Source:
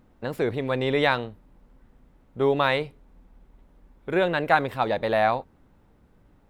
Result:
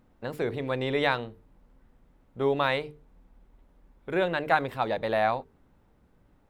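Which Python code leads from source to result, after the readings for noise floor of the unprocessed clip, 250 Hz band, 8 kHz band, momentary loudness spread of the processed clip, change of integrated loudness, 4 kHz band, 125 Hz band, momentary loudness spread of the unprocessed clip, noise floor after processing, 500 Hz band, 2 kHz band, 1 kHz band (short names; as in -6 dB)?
-60 dBFS, -4.0 dB, n/a, 11 LU, -3.5 dB, -3.5 dB, -4.0 dB, 11 LU, -64 dBFS, -4.0 dB, -3.5 dB, -3.5 dB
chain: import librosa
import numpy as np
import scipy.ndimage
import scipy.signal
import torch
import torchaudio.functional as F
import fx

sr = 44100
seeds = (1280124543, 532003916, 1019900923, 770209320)

y = fx.hum_notches(x, sr, base_hz=50, count=9)
y = F.gain(torch.from_numpy(y), -3.5).numpy()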